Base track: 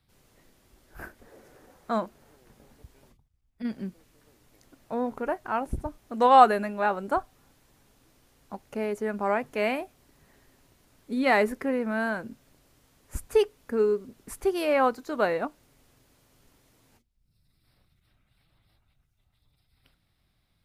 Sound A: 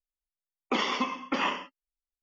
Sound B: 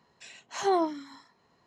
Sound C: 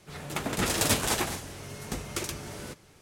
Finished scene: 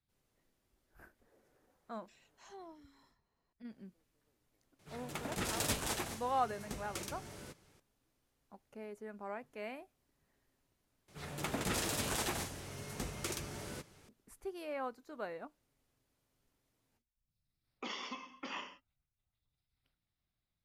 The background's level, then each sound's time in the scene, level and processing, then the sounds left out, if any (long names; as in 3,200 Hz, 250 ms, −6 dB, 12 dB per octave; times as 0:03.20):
base track −17.5 dB
0:01.87: mix in B −17.5 dB + downward compressor 1.5 to 1, threshold −47 dBFS
0:04.79: mix in C −10 dB
0:11.08: overwrite with C −5 dB + brickwall limiter −20 dBFS
0:17.11: mix in A −17 dB + high-shelf EQ 3,000 Hz +8.5 dB